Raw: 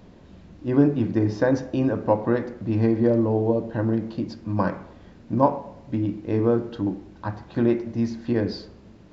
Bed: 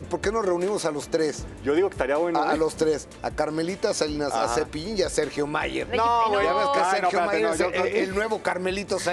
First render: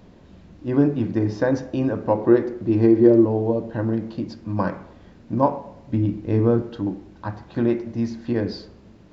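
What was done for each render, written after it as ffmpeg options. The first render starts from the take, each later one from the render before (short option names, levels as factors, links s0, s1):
-filter_complex "[0:a]asettb=1/sr,asplit=3[s0][s1][s2];[s0]atrim=end=2.154[s3];[s1]atrim=start=2.15:end=3.25,asetpts=PTS-STARTPTS,afade=t=in:d=0.004:c=qsin,afade=t=out:st=1.096:d=0.004:c=qsin,equalizer=f=360:w=3.7:g=11[s4];[s2]atrim=start=3.246[s5];[s3][s4]acrossfade=d=0.004:c1=hsin:c2=qsin[s6];[s6][s5]acrossfade=d=0.004:c1=qsin:c2=hsin,asettb=1/sr,asplit=3[s7][s8][s9];[s7]atrim=end=5.934[s10];[s8]atrim=start=5.93:end=6.62,asetpts=PTS-STARTPTS,afade=t=in:d=0.004:c=qsin,afade=t=out:st=0.686:d=0.004:c=qsin,lowshelf=f=160:g=9[s11];[s9]atrim=start=6.616[s12];[s10][s11]acrossfade=d=0.004:c1=hsin:c2=qsin[s13];[s13][s12]acrossfade=d=0.004:c1=qsin:c2=hsin"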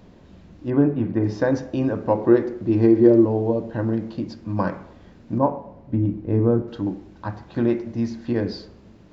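-filter_complex "[0:a]asettb=1/sr,asplit=3[s0][s1][s2];[s0]atrim=end=0.704[s3];[s1]atrim=start=0.7:end=1.24,asetpts=PTS-STARTPTS,afade=t=in:d=0.004:c=qsin,afade=t=out:st=0.536:d=0.004:c=qsin,lowpass=2400[s4];[s2]atrim=start=1.236[s5];[s3][s4]acrossfade=d=0.004:c1=hsin:c2=qsin[s6];[s6][s5]acrossfade=d=0.004:c1=qsin:c2=hsin,asettb=1/sr,asplit=3[s7][s8][s9];[s7]atrim=end=5.384[s10];[s8]atrim=start=5.38:end=6.68,asetpts=PTS-STARTPTS,afade=t=in:d=0.004:c=qsin,afade=t=out:st=1.296:d=0.004:c=qsin,lowpass=f=1100:p=1[s11];[s9]atrim=start=6.676[s12];[s10][s11]acrossfade=d=0.004:c1=hsin:c2=qsin[s13];[s13][s12]acrossfade=d=0.004:c1=qsin:c2=hsin"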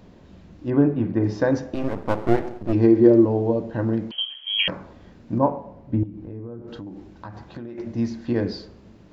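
-filter_complex "[0:a]asettb=1/sr,asplit=3[s0][s1][s2];[s0]atrim=end=1.744[s3];[s1]atrim=start=1.74:end=2.73,asetpts=PTS-STARTPTS,afade=t=in:d=0.004:c=qsin,afade=t=out:st=0.986:d=0.004:c=qsin,aeval=exprs='max(val(0),0)':c=same[s4];[s2]atrim=start=2.726[s5];[s3][s4]acrossfade=d=0.004:c1=hsin:c2=qsin[s6];[s6][s5]acrossfade=d=0.004:c1=qsin:c2=hsin,asettb=1/sr,asplit=3[s7][s8][s9];[s7]atrim=end=4.114[s10];[s8]atrim=start=4.11:end=4.68,asetpts=PTS-STARTPTS,afade=t=in:d=0.004:c=qsin,afade=t=out:st=0.566:d=0.004:c=qsin,lowpass=f=2900:t=q:w=0.5098,lowpass=f=2900:t=q:w=0.6013,lowpass=f=2900:t=q:w=0.9,lowpass=f=2900:t=q:w=2.563,afreqshift=-3400[s11];[s9]atrim=start=4.676[s12];[s10][s11]acrossfade=d=0.004:c1=hsin:c2=qsin[s13];[s13][s12]acrossfade=d=0.004:c1=qsin:c2=hsin,asettb=1/sr,asplit=3[s14][s15][s16];[s14]atrim=end=6.034[s17];[s15]atrim=start=6.03:end=7.78,asetpts=PTS-STARTPTS,afade=t=in:d=0.004:c=qsin,afade=t=out:st=1.746:d=0.004:c=qsin,acompressor=threshold=0.0251:ratio=10:attack=3.2:release=140:knee=1:detection=peak[s18];[s16]atrim=start=7.776[s19];[s17][s18]acrossfade=d=0.004:c1=hsin:c2=qsin[s20];[s20][s19]acrossfade=d=0.004:c1=qsin:c2=hsin"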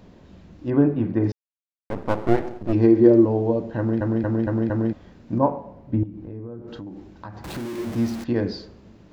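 -filter_complex "[0:a]asettb=1/sr,asplit=3[s0][s1][s2];[s0]atrim=end=7.444[s3];[s1]atrim=start=7.44:end=8.24,asetpts=PTS-STARTPTS,afade=t=in:d=0.004:c=qsin,afade=t=out:st=0.796:d=0.004:c=qsin,aeval=exprs='val(0)+0.5*0.0299*sgn(val(0))':c=same[s4];[s2]atrim=start=8.236[s5];[s3][s4]acrossfade=d=0.004:c1=hsin:c2=qsin[s6];[s6][s5]acrossfade=d=0.004:c1=qsin:c2=hsin,asplit=8[s7][s8][s9][s10][s11][s12][s13][s14];[s7]atrim=end=1.32,asetpts=PTS-STARTPTS,afade=t=out:st=1.316:d=0.004:c=hsin[s15];[s8]atrim=start=1.32:end=1.9,asetpts=PTS-STARTPTS,volume=0[s16];[s9]atrim=start=1.9:end=4.012,asetpts=PTS-STARTPTS,afade=t=in:d=0.004:c=hsin[s17];[s10]atrim=start=3.778:end=4.012[s18];[s11]atrim=start=3.778:end=4.012[s19];[s12]atrim=start=3.778:end=4.012[s20];[s13]atrim=start=3.778:end=4.012[s21];[s14]atrim=start=4.928[s22];[s15][s16][s17]concat=n=3:v=0:a=1[s23];[s23][s18]acrossfade=d=0.004:c1=hsin:c2=hsin[s24];[s24][s19]acrossfade=d=0.004:c1=hsin:c2=hsin[s25];[s25][s20]acrossfade=d=0.004:c1=hsin:c2=hsin[s26];[s26][s21]acrossfade=d=0.004:c1=hsin:c2=hsin[s27];[s27][s22]acrossfade=d=0.004:c1=hsin:c2=hsin"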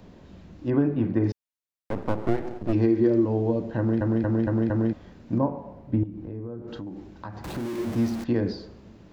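-filter_complex "[0:a]acrossover=split=380|1300[s0][s1][s2];[s0]acompressor=threshold=0.1:ratio=4[s3];[s1]acompressor=threshold=0.0316:ratio=4[s4];[s2]acompressor=threshold=0.00794:ratio=4[s5];[s3][s4][s5]amix=inputs=3:normalize=0"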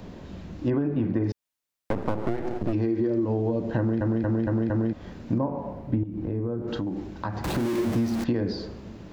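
-filter_complex "[0:a]asplit=2[s0][s1];[s1]alimiter=limit=0.126:level=0:latency=1,volume=1.26[s2];[s0][s2]amix=inputs=2:normalize=0,acompressor=threshold=0.0794:ratio=6"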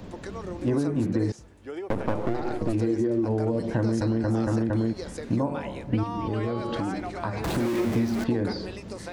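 -filter_complex "[1:a]volume=0.2[s0];[0:a][s0]amix=inputs=2:normalize=0"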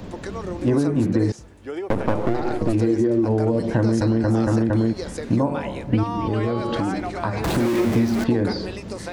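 -af "volume=1.88"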